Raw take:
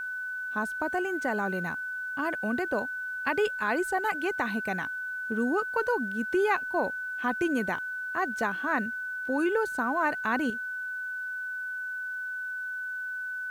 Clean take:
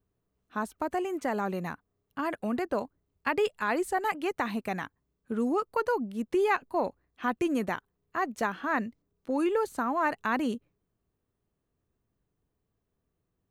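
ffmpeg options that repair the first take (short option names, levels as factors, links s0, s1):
-af "bandreject=f=1500:w=30,agate=range=0.0891:threshold=0.0447,asetnsamples=n=441:p=0,asendcmd='10.5 volume volume 9.5dB',volume=1"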